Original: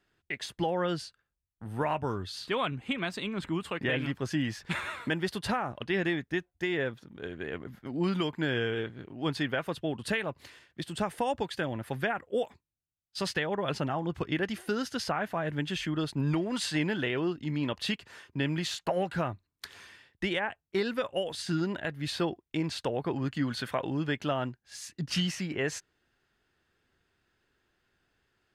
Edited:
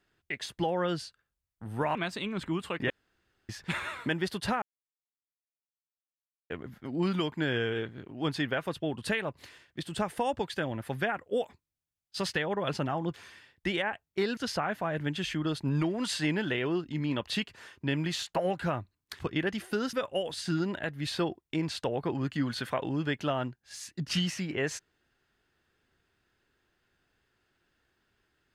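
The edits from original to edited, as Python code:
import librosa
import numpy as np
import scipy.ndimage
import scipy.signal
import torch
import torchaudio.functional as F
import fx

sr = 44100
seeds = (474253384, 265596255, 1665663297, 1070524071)

y = fx.edit(x, sr, fx.cut(start_s=1.95, length_s=1.01),
    fx.room_tone_fill(start_s=3.91, length_s=0.59),
    fx.silence(start_s=5.63, length_s=1.88),
    fx.swap(start_s=14.15, length_s=0.74, other_s=19.71, other_length_s=1.23), tone=tone)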